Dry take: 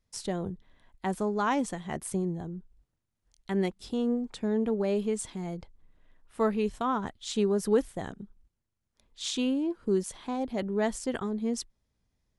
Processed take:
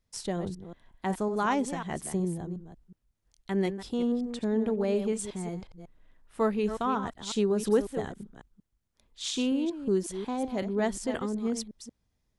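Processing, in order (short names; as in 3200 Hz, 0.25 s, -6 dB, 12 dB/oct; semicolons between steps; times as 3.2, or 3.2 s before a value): reverse delay 0.183 s, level -10 dB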